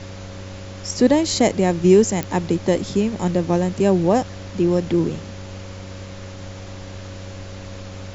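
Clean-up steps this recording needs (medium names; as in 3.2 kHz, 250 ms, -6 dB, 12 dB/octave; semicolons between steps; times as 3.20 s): de-click; de-hum 96.2 Hz, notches 7; band-stop 550 Hz, Q 30; noise reduction 30 dB, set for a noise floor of -35 dBFS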